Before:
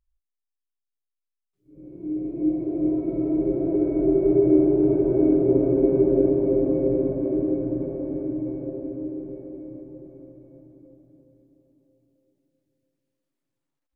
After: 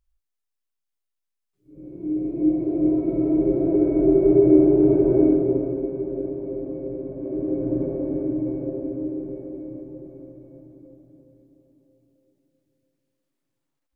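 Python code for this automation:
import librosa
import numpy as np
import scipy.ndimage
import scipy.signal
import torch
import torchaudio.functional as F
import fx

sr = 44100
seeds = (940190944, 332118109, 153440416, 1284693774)

y = fx.gain(x, sr, db=fx.line((5.19, 3.0), (5.93, -9.0), (7.05, -9.0), (7.75, 3.0)))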